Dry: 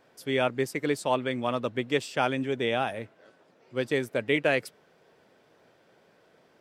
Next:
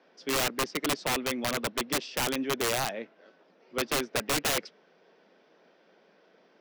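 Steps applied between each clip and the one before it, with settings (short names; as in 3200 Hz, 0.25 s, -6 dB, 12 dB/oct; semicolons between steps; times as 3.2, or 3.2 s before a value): Chebyshev band-pass 180–5700 Hz, order 4; wrapped overs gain 21.5 dB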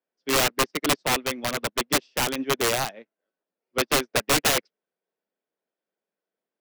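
upward expander 2.5:1, over -50 dBFS; gain +8 dB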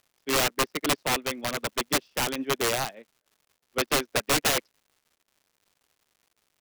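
crackle 240/s -50 dBFS; gain -2.5 dB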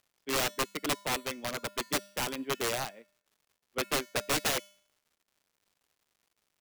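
resonator 200 Hz, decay 0.59 s, harmonics odd, mix 50%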